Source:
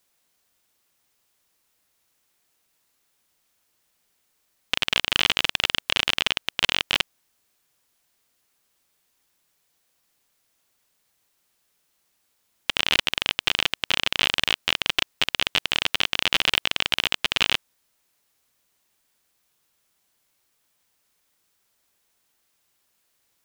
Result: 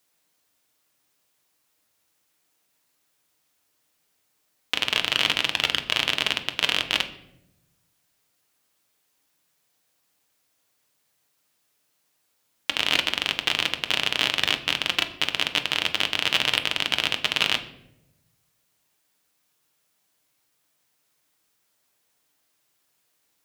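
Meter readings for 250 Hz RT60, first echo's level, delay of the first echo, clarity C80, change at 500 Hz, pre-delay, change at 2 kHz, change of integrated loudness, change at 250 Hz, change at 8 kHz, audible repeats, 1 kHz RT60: 1.3 s, none, none, 15.5 dB, +0.5 dB, 6 ms, -0.5 dB, -0.5 dB, +1.0 dB, -0.5 dB, none, 0.65 s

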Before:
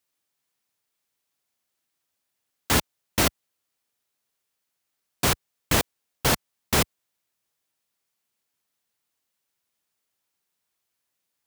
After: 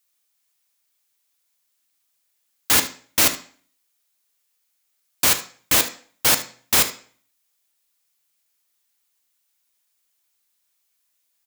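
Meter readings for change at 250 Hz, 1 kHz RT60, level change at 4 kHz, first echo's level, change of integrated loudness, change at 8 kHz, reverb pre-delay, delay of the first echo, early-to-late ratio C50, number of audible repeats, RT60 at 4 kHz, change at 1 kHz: -3.5 dB, 0.45 s, +5.5 dB, -15.5 dB, +6.0 dB, +8.0 dB, 3 ms, 74 ms, 12.0 dB, 1, 0.40 s, +0.5 dB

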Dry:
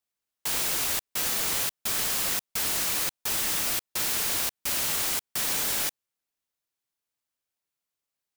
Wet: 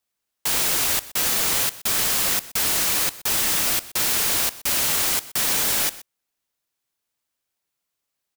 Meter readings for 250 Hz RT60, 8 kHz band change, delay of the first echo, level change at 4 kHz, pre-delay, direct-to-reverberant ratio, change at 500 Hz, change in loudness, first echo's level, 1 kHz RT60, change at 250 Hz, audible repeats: none, +6.0 dB, 0.124 s, +6.0 dB, none, none, +6.0 dB, +6.0 dB, -18.0 dB, none, +6.0 dB, 1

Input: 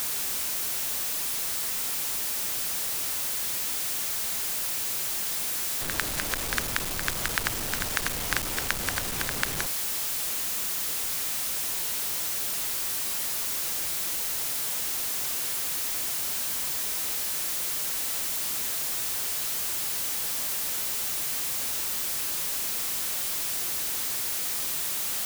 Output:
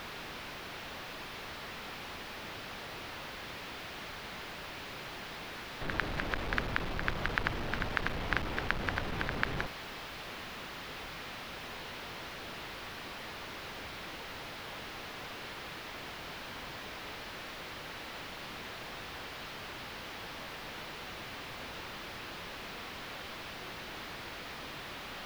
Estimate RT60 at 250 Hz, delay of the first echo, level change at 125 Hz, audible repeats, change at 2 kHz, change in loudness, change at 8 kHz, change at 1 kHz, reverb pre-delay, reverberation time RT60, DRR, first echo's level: none, none, 0.0 dB, none, -3.0 dB, -13.0 dB, -26.5 dB, -1.5 dB, none, none, none, none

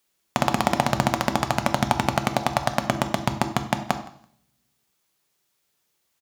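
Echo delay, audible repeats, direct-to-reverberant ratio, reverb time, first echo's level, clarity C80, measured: 0.167 s, 1, 7.0 dB, 0.65 s, -23.5 dB, 14.5 dB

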